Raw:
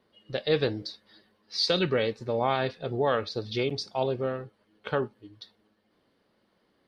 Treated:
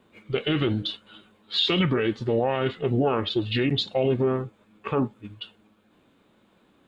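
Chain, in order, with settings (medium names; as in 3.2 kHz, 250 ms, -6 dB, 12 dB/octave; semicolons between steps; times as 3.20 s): formant shift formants -4 st; peak limiter -22 dBFS, peak gain reduction 11 dB; trim +8.5 dB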